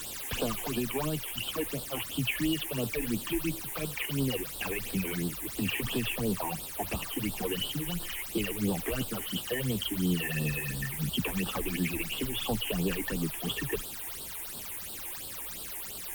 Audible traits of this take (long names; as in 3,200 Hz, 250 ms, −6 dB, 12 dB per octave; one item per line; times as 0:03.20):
a quantiser's noise floor 6 bits, dither triangular
phaser sweep stages 8, 2.9 Hz, lowest notch 160–2,100 Hz
Opus